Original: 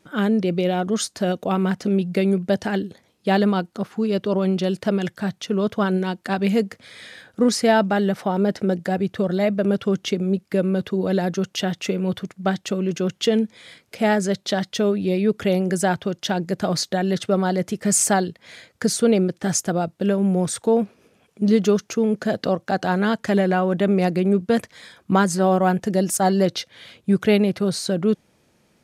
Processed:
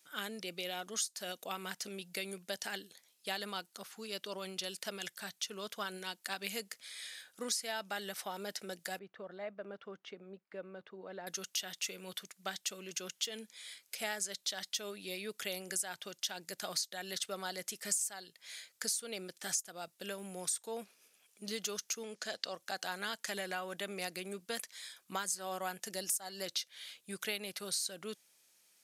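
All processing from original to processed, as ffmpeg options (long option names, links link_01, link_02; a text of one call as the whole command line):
ffmpeg -i in.wav -filter_complex "[0:a]asettb=1/sr,asplit=3[link_01][link_02][link_03];[link_01]atrim=end=8.994[link_04];[link_02]atrim=start=8.99:end=11.27,asetpts=PTS-STARTPTS,afade=type=in:duration=0.004:curve=qsin,afade=type=out:start_time=2.276:duration=0.004:curve=qsin,lowpass=1200,lowshelf=frequency=400:gain=-5.5[link_05];[link_03]atrim=start=11.266[link_06];[link_04][link_05]acrossfade=duration=0.004:curve1=hsin:curve2=qsin[link_07];[link_07][link_06]acrossfade=duration=0.004:curve1=qsin:curve2=hsin,asettb=1/sr,asplit=3[link_08][link_09][link_10];[link_08]atrim=end=22.034[link_11];[link_09]atrim=start=22.03:end=22.54,asetpts=PTS-STARTPTS,afade=type=in:duration=0.004:curve=qsin,afade=type=out:start_time=0.506:duration=0.004:curve=qsin,lowpass=6100,bass=frequency=250:gain=-4,treble=frequency=4000:gain=5[link_12];[link_10]atrim=start=22.536[link_13];[link_11][link_12]acrossfade=duration=0.004:curve1=hsin:curve2=qsin[link_14];[link_14][link_13]acrossfade=duration=0.004:curve1=qsin:curve2=hsin,aderivative,acompressor=threshold=-35dB:ratio=8,volume=2dB" out.wav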